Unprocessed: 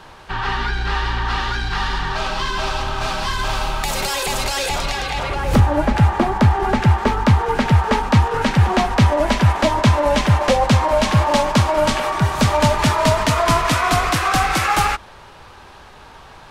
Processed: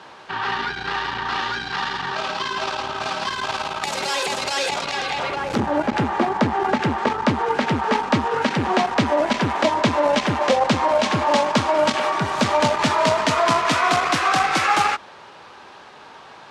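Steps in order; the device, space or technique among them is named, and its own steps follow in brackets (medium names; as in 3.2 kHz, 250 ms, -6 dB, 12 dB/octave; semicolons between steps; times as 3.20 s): public-address speaker with an overloaded transformer (transformer saturation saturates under 180 Hz; band-pass 210–6900 Hz)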